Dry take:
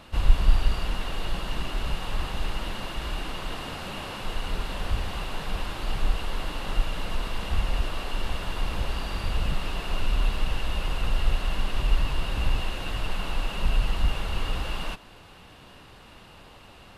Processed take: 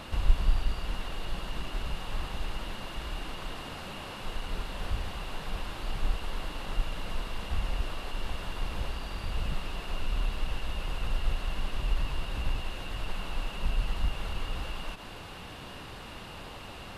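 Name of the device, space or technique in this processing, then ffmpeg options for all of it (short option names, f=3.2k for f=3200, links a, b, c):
de-esser from a sidechain: -filter_complex "[0:a]asplit=2[a][b];[b]highpass=5k,apad=whole_len=748473[c];[a][c]sidechaincompress=threshold=-56dB:ratio=12:attack=2.5:release=65,volume=6dB"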